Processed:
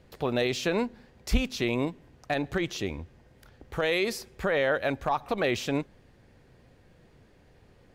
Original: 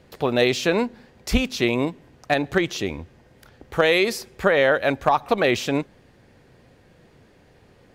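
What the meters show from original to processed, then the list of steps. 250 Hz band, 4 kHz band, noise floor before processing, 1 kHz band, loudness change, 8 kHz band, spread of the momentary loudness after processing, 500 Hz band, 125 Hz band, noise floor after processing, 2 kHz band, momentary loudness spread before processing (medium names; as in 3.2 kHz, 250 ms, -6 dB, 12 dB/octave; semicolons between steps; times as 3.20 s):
-6.5 dB, -7.0 dB, -55 dBFS, -8.0 dB, -7.5 dB, -6.0 dB, 9 LU, -7.5 dB, -4.5 dB, -59 dBFS, -8.0 dB, 11 LU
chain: peak limiter -10.5 dBFS, peak gain reduction 6 dB; bass shelf 70 Hz +9.5 dB; trim -6 dB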